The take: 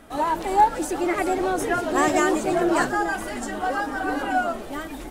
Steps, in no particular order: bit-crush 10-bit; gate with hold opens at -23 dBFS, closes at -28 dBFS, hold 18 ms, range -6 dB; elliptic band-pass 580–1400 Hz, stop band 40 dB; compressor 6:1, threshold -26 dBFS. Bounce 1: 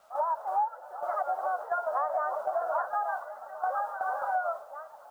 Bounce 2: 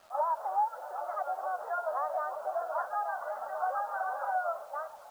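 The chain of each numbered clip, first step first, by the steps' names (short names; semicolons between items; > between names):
elliptic band-pass > bit-crush > gate with hold > compressor; gate with hold > compressor > elliptic band-pass > bit-crush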